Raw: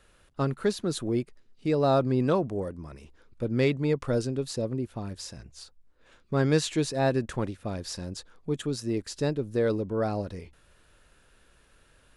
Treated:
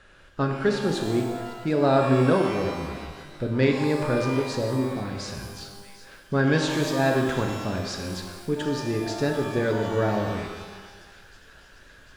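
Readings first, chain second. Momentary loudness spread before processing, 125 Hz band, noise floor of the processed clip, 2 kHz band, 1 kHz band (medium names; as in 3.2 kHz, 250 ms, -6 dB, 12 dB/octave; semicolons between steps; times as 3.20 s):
15 LU, +3.0 dB, -51 dBFS, +8.5 dB, +6.0 dB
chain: low-pass 5.6 kHz 12 dB/octave; peaking EQ 1.6 kHz +8 dB 0.3 oct; in parallel at -1 dB: compression, threshold -39 dBFS, peak gain reduction 20 dB; on the sum: feedback echo behind a high-pass 747 ms, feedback 71%, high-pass 1.8 kHz, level -17 dB; pitch-shifted reverb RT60 1.4 s, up +12 st, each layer -8 dB, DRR 2.5 dB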